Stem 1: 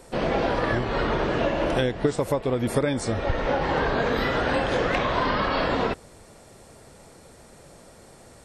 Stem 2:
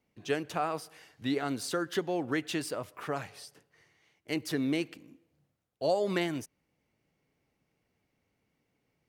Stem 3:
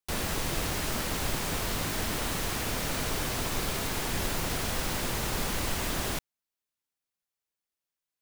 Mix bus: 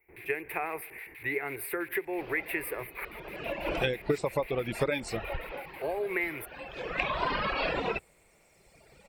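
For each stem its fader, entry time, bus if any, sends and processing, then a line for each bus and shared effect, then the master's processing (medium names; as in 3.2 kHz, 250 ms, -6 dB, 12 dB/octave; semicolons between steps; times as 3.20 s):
-3.5 dB, 2.05 s, no bus, no send, reverb removal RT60 1.8 s; auto duck -18 dB, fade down 0.65 s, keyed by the second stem
+3.0 dB, 0.00 s, muted 3.05–5.64 s, bus A, no send, none
-6.0 dB, 0.00 s, bus A, no send, LFO band-pass square 6.1 Hz 240–3700 Hz
bus A: 0.0 dB, FFT filter 110 Hz 0 dB, 210 Hz -20 dB, 390 Hz +4 dB, 590 Hz -8 dB, 880 Hz 0 dB, 1.3 kHz -6 dB, 2.1 kHz +10 dB, 3 kHz -17 dB, 6.9 kHz -25 dB, 10 kHz +12 dB; compression 10:1, threshold -28 dBFS, peak gain reduction 9.5 dB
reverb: none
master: graphic EQ with 31 bands 100 Hz -12 dB, 250 Hz -8 dB, 2.5 kHz +12 dB, 6.3 kHz -7 dB, 10 kHz -10 dB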